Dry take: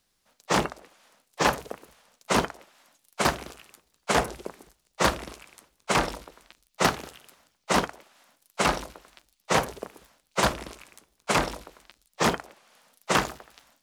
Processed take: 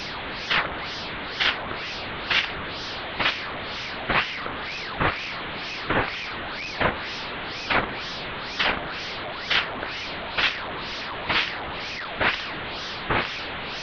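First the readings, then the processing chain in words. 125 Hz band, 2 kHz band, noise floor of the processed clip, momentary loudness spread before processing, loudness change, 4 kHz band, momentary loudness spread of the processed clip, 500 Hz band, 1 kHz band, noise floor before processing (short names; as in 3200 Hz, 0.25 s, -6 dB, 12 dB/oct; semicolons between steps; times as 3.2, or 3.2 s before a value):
0.0 dB, +6.5 dB, -33 dBFS, 18 LU, +0.5 dB, +7.5 dB, 8 LU, -2.0 dB, 0.0 dB, -73 dBFS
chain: delta modulation 16 kbps, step -27.5 dBFS; ring modulator with a swept carrier 1600 Hz, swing 60%, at 2.1 Hz; gain +5 dB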